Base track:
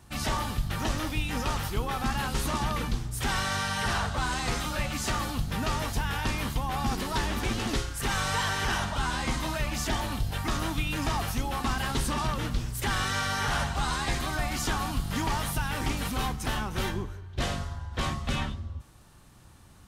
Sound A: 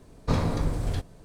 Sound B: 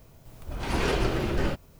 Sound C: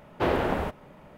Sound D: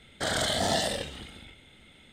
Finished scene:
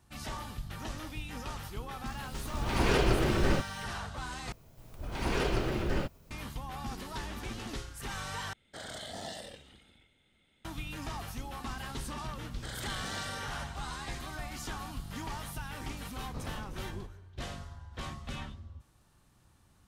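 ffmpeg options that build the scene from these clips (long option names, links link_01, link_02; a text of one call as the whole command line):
ffmpeg -i bed.wav -i cue0.wav -i cue1.wav -i cue2.wav -i cue3.wav -filter_complex "[2:a]asplit=2[link_01][link_02];[4:a]asplit=2[link_03][link_04];[0:a]volume=-10.5dB[link_05];[link_04]equalizer=frequency=660:width=4.6:gain=-11.5[link_06];[link_05]asplit=3[link_07][link_08][link_09];[link_07]atrim=end=4.524[link_10];[link_02]atrim=end=1.79,asetpts=PTS-STARTPTS,volume=-4.5dB[link_11];[link_08]atrim=start=6.306:end=8.534[link_12];[link_03]atrim=end=2.12,asetpts=PTS-STARTPTS,volume=-15dB[link_13];[link_09]atrim=start=10.646[link_14];[link_01]atrim=end=1.79,asetpts=PTS-STARTPTS,volume=-0.5dB,afade=type=in:duration=0.004:curve=hsin,afade=type=out:start_time=1.786:duration=0.004:curve=hsin,adelay=2060[link_15];[link_06]atrim=end=2.12,asetpts=PTS-STARTPTS,volume=-13dB,afade=type=in:duration=0.004:curve=hsin,afade=type=out:start_time=2.116:duration=0.004:curve=hsin,adelay=12420[link_16];[1:a]atrim=end=1.24,asetpts=PTS-STARTPTS,volume=-17.5dB,afade=type=in:duration=0.004:curve=hsin,afade=type=out:start_time=1.236:duration=0.004:curve=hsin,adelay=16060[link_17];[link_10][link_11]acrossfade=duration=0.004:curve1=hsin:curve2=hsin[link_18];[link_18][link_12]acrossfade=duration=0.004:curve1=hsin:curve2=hsin[link_19];[link_19][link_13]acrossfade=duration=0.004:curve1=hsin:curve2=hsin[link_20];[link_20][link_14]acrossfade=duration=0.004:curve1=hsin:curve2=hsin[link_21];[link_21][link_15][link_16][link_17]amix=inputs=4:normalize=0" out.wav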